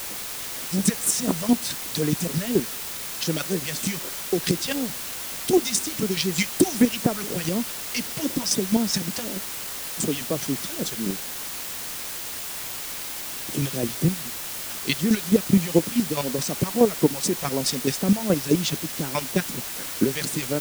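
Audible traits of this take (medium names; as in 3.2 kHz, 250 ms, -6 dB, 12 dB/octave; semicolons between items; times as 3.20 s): phasing stages 2, 4 Hz, lowest notch 260–4700 Hz; chopped level 4.7 Hz, depth 60%, duty 20%; a quantiser's noise floor 6-bit, dither triangular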